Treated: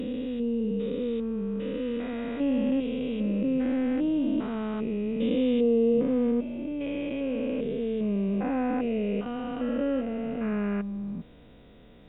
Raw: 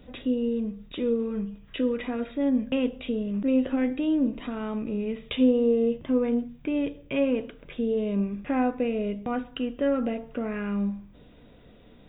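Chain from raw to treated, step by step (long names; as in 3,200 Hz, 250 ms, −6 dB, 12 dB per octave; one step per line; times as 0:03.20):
spectrum averaged block by block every 400 ms
0:06.31–0:06.81: parametric band 2,500 Hz −4.5 dB 2.6 octaves
level +2 dB
Opus 48 kbit/s 48,000 Hz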